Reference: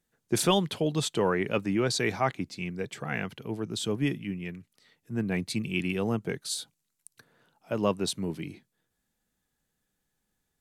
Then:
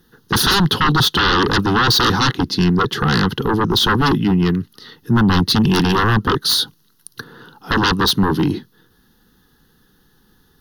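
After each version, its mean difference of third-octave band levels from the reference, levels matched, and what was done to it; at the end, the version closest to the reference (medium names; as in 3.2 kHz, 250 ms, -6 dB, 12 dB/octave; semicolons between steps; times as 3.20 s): 8.0 dB: peaking EQ 450 Hz +8.5 dB 1.5 oct; in parallel at -2 dB: compression, threshold -33 dBFS, peak gain reduction 18 dB; on the sum: sine folder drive 17 dB, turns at -6.5 dBFS; static phaser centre 2.3 kHz, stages 6; trim -1.5 dB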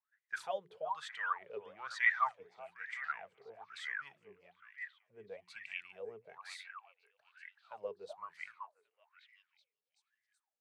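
14.0 dB: amplifier tone stack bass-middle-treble 10-0-10; hum notches 60/120/180/240/300/360 Hz; on a send: repeats whose band climbs or falls 378 ms, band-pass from 910 Hz, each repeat 0.7 oct, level -4 dB; on the sum: wah-wah 1.1 Hz 410–2000 Hz, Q 19; trim +16 dB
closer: first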